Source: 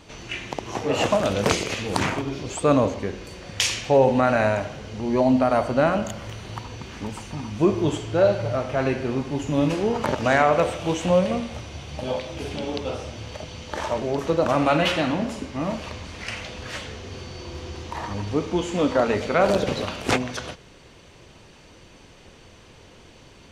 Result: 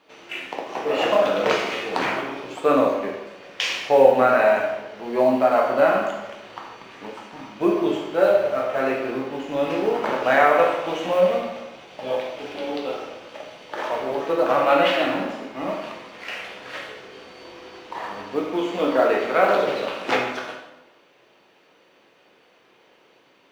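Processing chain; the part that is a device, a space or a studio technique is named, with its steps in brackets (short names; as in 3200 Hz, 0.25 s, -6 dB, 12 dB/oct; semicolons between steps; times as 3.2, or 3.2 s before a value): phone line with mismatched companding (BPF 370–3400 Hz; G.711 law mismatch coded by A); plate-style reverb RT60 1 s, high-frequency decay 0.75×, DRR -1.5 dB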